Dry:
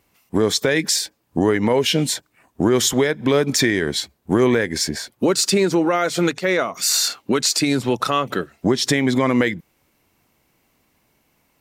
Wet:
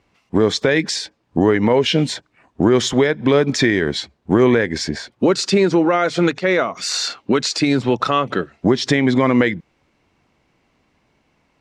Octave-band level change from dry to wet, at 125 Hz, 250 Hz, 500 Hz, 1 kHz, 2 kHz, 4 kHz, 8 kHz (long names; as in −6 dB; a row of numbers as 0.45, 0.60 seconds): +3.0, +3.0, +2.5, +2.5, +2.0, −1.0, −6.5 decibels